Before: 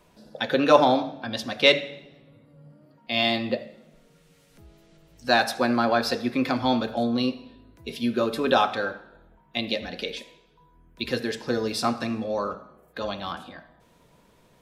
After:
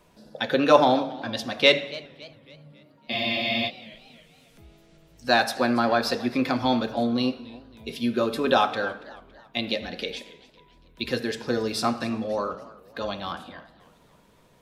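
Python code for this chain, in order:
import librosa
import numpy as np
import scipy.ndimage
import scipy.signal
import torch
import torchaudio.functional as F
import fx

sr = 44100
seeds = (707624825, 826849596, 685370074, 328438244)

y = fx.spec_freeze(x, sr, seeds[0], at_s=3.14, hold_s=0.54)
y = fx.echo_warbled(y, sr, ms=277, feedback_pct=45, rate_hz=2.8, cents=159, wet_db=-20.0)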